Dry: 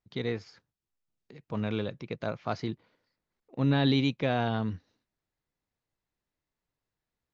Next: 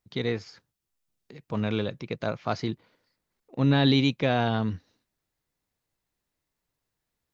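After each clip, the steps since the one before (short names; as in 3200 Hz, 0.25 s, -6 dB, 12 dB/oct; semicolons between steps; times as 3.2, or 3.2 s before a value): high shelf 5100 Hz +5.5 dB; gain +3.5 dB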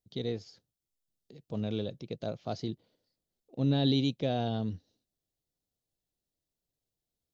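band shelf 1500 Hz -12 dB; gain -5.5 dB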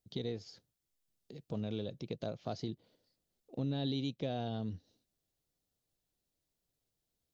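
compressor 2.5:1, threshold -40 dBFS, peak gain reduction 12 dB; gain +2.5 dB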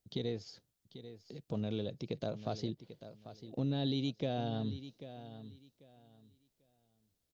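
feedback echo 0.792 s, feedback 22%, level -13 dB; gain +1.5 dB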